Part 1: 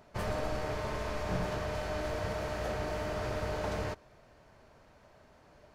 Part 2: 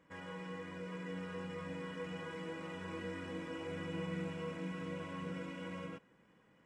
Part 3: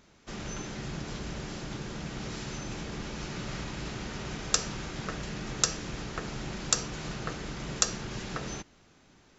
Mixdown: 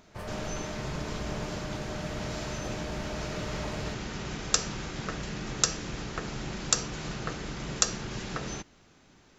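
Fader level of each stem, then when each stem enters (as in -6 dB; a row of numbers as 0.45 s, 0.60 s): -4.5 dB, -16.5 dB, +1.0 dB; 0.00 s, 0.00 s, 0.00 s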